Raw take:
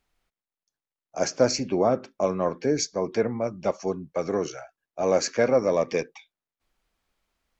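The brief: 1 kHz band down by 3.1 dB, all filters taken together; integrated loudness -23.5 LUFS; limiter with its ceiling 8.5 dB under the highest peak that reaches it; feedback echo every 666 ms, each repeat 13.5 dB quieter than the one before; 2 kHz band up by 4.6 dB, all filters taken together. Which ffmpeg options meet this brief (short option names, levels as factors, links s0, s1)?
-af "equalizer=f=1000:t=o:g=-6.5,equalizer=f=2000:t=o:g=8,alimiter=limit=0.15:level=0:latency=1,aecho=1:1:666|1332:0.211|0.0444,volume=1.88"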